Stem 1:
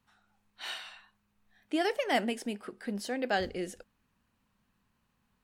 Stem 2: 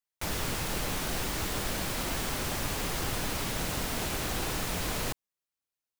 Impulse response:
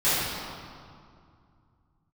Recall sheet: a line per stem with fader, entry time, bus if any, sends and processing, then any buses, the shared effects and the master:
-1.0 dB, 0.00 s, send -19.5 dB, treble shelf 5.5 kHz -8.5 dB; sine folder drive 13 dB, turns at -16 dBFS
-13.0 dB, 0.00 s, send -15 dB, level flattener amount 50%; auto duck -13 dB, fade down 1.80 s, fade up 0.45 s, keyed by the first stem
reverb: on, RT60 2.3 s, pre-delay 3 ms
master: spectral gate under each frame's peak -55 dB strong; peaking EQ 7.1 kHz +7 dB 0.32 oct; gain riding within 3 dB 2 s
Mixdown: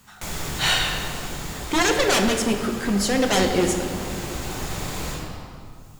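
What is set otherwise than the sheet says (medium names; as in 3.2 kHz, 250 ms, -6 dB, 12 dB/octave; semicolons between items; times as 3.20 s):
stem 1: missing treble shelf 5.5 kHz -8.5 dB; stem 2 -13.0 dB -> -4.0 dB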